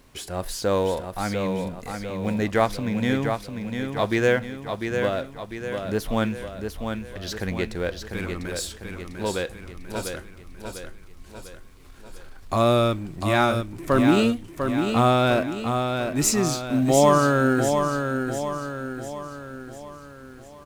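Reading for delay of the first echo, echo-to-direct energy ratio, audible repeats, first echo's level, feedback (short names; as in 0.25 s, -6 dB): 0.698 s, -5.0 dB, 5, -6.0 dB, 50%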